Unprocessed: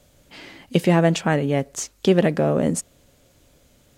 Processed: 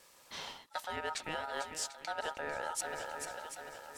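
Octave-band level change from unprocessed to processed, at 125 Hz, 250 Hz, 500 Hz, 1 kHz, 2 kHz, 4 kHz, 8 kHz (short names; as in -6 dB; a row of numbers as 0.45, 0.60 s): -35.0, -32.0, -21.0, -9.5, -9.5, -9.5, -9.5 dB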